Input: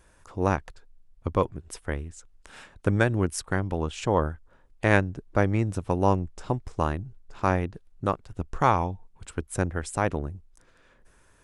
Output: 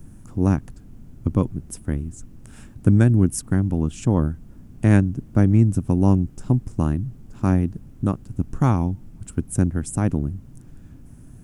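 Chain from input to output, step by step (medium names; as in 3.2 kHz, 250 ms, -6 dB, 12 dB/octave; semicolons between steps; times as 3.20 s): treble shelf 9.6 kHz +10 dB; added noise brown -46 dBFS; ten-band graphic EQ 125 Hz +7 dB, 250 Hz +9 dB, 500 Hz -8 dB, 1 kHz -7 dB, 2 kHz -7 dB, 4 kHz -10 dB; trim +3 dB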